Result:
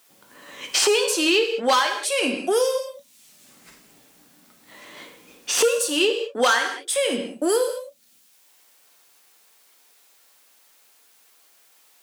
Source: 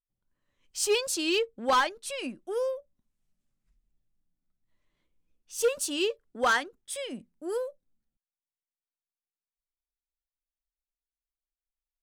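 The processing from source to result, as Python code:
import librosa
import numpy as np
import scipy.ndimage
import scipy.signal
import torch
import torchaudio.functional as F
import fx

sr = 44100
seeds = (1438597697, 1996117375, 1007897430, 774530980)

y = scipy.signal.sosfilt(scipy.signal.butter(2, 340.0, 'highpass', fs=sr, output='sos'), x)
y = fx.rev_gated(y, sr, seeds[0], gate_ms=230, shape='falling', drr_db=3.0)
y = fx.band_squash(y, sr, depth_pct=100)
y = y * 10.0 ** (7.5 / 20.0)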